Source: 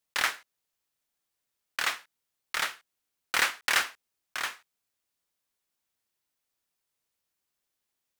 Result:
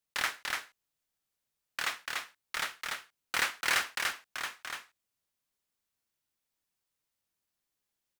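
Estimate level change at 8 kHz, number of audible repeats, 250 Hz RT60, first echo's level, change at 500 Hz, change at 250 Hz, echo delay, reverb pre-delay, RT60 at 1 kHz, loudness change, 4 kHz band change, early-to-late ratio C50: -2.5 dB, 1, none, -3.0 dB, -2.5 dB, -1.0 dB, 0.291 s, none, none, -4.5 dB, -3.0 dB, none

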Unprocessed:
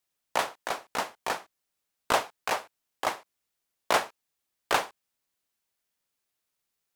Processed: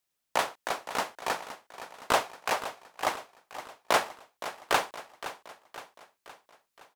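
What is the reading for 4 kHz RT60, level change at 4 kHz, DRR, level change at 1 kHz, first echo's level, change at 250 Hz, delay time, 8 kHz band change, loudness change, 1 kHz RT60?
none, +0.5 dB, none, +0.5 dB, -13.0 dB, +0.5 dB, 0.517 s, +0.5 dB, -1.0 dB, none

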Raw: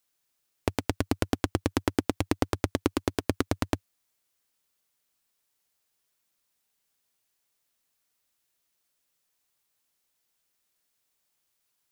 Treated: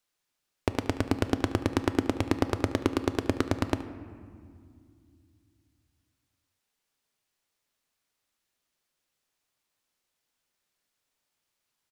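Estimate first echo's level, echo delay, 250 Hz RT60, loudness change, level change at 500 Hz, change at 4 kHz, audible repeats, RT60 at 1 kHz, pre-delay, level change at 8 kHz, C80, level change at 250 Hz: -17.0 dB, 73 ms, 3.4 s, +1.0 dB, +1.0 dB, -1.0 dB, 1, 2.1 s, 3 ms, -4.0 dB, 13.0 dB, +1.0 dB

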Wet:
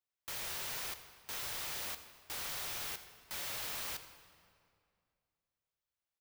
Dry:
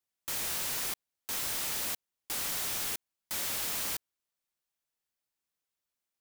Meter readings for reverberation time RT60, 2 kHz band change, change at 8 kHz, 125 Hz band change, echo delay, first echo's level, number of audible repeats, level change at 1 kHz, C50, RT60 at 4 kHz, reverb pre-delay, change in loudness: 2.3 s, -4.0 dB, -9.0 dB, -4.5 dB, 83 ms, -18.5 dB, 1, -4.0 dB, 10.5 dB, 1.6 s, 3 ms, -7.0 dB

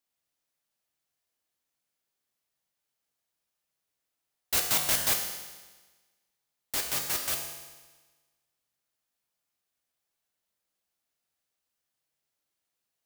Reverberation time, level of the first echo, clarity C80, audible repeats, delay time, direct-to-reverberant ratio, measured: 1.3 s, none, 7.0 dB, none, none, 2.0 dB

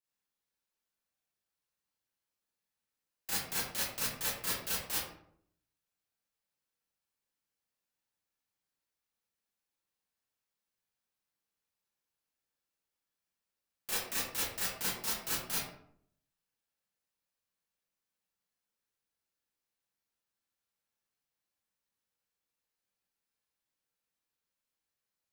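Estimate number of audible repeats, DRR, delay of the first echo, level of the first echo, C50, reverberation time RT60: none, -9.5 dB, none, none, 0.5 dB, 0.65 s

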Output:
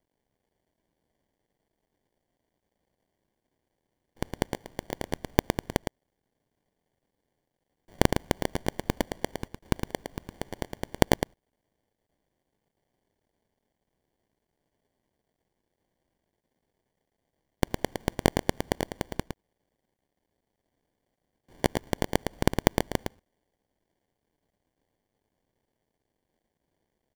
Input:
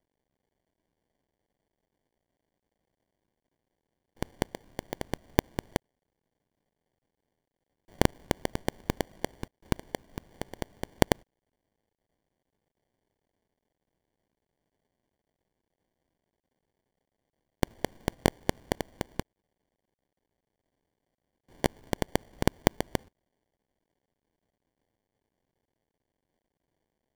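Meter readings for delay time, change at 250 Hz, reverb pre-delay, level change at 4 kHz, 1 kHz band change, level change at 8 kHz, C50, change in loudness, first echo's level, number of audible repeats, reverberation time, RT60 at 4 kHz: 0.111 s, +2.5 dB, none, +2.5 dB, +2.5 dB, +2.5 dB, none, +2.5 dB, -6.0 dB, 1, none, none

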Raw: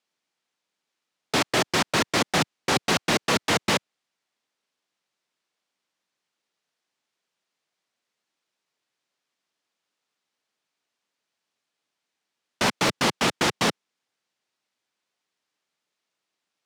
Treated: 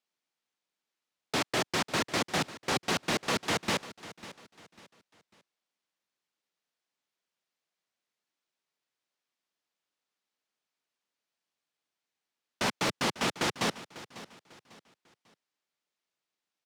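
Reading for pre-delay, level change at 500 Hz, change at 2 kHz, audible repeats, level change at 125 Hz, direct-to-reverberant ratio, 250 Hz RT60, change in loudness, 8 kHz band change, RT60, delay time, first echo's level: none, -7.0 dB, -7.0 dB, 2, -7.0 dB, none, none, -7.0 dB, -7.0 dB, none, 0.547 s, -16.5 dB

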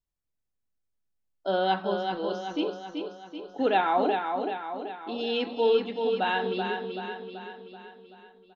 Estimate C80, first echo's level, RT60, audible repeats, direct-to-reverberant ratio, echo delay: none, -5.5 dB, none, 6, none, 0.382 s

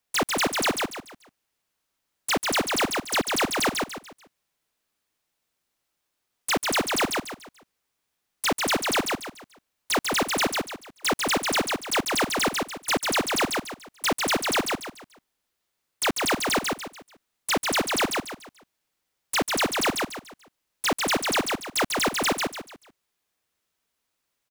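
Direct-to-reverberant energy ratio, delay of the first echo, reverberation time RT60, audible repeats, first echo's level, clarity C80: none, 0.145 s, none, 4, -3.5 dB, none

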